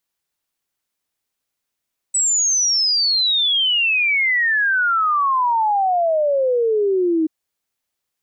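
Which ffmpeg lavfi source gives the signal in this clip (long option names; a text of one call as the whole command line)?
ffmpeg -f lavfi -i "aevalsrc='0.188*clip(min(t,5.13-t)/0.01,0,1)*sin(2*PI*8000*5.13/log(310/8000)*(exp(log(310/8000)*t/5.13)-1))':duration=5.13:sample_rate=44100" out.wav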